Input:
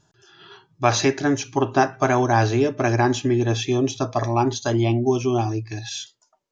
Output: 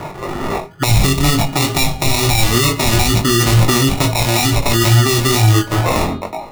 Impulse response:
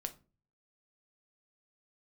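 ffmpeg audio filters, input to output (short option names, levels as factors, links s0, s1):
-filter_complex "[0:a]acrusher=samples=28:mix=1:aa=0.000001,equalizer=f=1000:t=o:w=2.6:g=10,asplit=2[s0][s1];[1:a]atrim=start_sample=2205,asetrate=48510,aresample=44100[s2];[s1][s2]afir=irnorm=-1:irlink=0,volume=1.88[s3];[s0][s3]amix=inputs=2:normalize=0,flanger=delay=18.5:depth=4.1:speed=2.2,acrossover=split=170|3000[s4][s5][s6];[s5]acompressor=threshold=0.0447:ratio=10[s7];[s4][s7][s6]amix=inputs=3:normalize=0,bandreject=f=410:t=h:w=4,bandreject=f=820:t=h:w=4,bandreject=f=1230:t=h:w=4,bandreject=f=1640:t=h:w=4,bandreject=f=2050:t=h:w=4,bandreject=f=2460:t=h:w=4,bandreject=f=2870:t=h:w=4,bandreject=f=3280:t=h:w=4,bandreject=f=3690:t=h:w=4,bandreject=f=4100:t=h:w=4,bandreject=f=4510:t=h:w=4,areverse,acompressor=mode=upward:threshold=0.0631:ratio=2.5,areverse,alimiter=level_in=4.73:limit=0.891:release=50:level=0:latency=1,volume=0.891"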